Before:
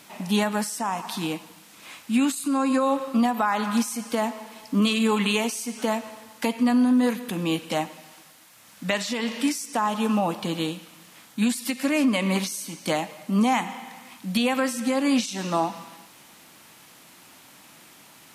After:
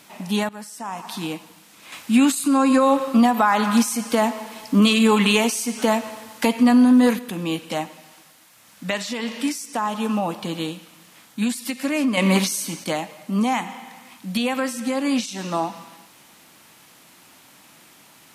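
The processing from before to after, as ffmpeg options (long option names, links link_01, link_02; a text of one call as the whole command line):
ffmpeg -i in.wav -filter_complex "[0:a]asettb=1/sr,asplit=3[link_01][link_02][link_03];[link_01]atrim=end=1.924[link_04];[link_02]atrim=start=1.92:end=7.19,asetpts=PTS-STARTPTS,afade=type=in:duration=0.004:curve=qsin,afade=type=out:start_time=5.266:duration=0.004:curve=qsin,acontrast=53[link_05];[link_03]atrim=start=7.186[link_06];[link_04][link_05]acrossfade=duration=0.004:curve1=hsin:curve2=qsin[link_07];[link_07][link_06]acrossfade=duration=0.004:curve1=qsin:curve2=hsin,asettb=1/sr,asplit=3[link_08][link_09][link_10];[link_08]atrim=end=12.174[link_11];[link_09]atrim=start=12.17:end=12.84,asetpts=PTS-STARTPTS,afade=type=in:duration=0.004:curve=qsin,afade=type=out:start_time=0.666:duration=0.004:curve=qsin,acontrast=69[link_12];[link_10]atrim=start=12.836[link_13];[link_11][link_12]acrossfade=duration=0.004:curve1=hsin:curve2=qsin[link_14];[link_14][link_13]acrossfade=duration=0.004:curve1=qsin:curve2=hsin,asplit=2[link_15][link_16];[link_15]atrim=end=0.49,asetpts=PTS-STARTPTS,afade=type=out:start_time=0.486:duration=0.004:curve=hsin:silence=0.16788[link_17];[link_16]atrim=start=0.49,asetpts=PTS-STARTPTS,afade=type=in:duration=0.67:silence=0.16788[link_18];[link_17][link_18]concat=n=2:v=0:a=1" out.wav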